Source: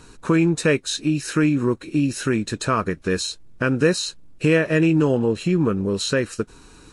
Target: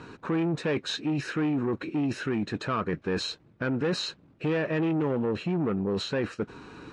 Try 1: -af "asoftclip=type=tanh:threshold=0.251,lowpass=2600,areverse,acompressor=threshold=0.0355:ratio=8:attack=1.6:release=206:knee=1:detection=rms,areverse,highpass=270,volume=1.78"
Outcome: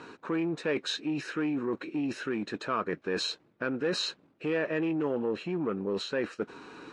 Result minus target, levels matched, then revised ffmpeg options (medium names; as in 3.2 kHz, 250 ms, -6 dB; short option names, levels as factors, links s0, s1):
125 Hz band -7.0 dB; saturation: distortion -7 dB
-af "asoftclip=type=tanh:threshold=0.126,lowpass=2600,areverse,acompressor=threshold=0.0355:ratio=8:attack=1.6:release=206:knee=1:detection=rms,areverse,highpass=110,volume=1.78"